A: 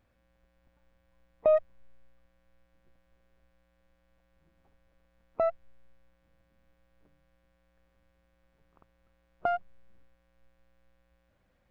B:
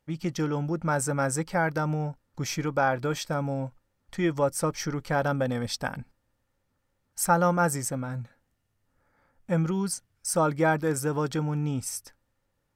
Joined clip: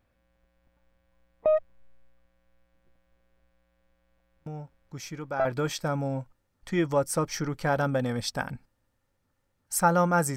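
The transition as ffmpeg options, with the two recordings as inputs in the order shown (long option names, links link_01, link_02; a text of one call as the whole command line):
ffmpeg -i cue0.wav -i cue1.wav -filter_complex "[1:a]asplit=2[link_01][link_02];[0:a]apad=whole_dur=10.36,atrim=end=10.36,atrim=end=5.452[link_03];[link_02]atrim=start=2.908:end=7.82[link_04];[link_01]atrim=start=1.92:end=2.91,asetpts=PTS-STARTPTS,volume=-8.5dB,afade=type=in:duration=0.004:curve=hsin,afade=type=out:start_time=0.986:duration=0.004:curve=hsin,adelay=4460[link_05];[link_03][link_04]acrossfade=duration=0.004:curve1=hsin:curve2=hsin[link_06];[link_06][link_05]amix=inputs=2:normalize=0" out.wav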